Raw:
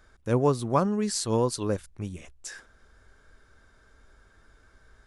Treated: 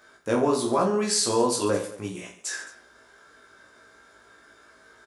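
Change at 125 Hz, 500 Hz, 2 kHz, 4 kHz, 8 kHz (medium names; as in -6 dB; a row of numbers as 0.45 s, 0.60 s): -7.0 dB, +3.0 dB, +7.5 dB, +7.5 dB, +7.0 dB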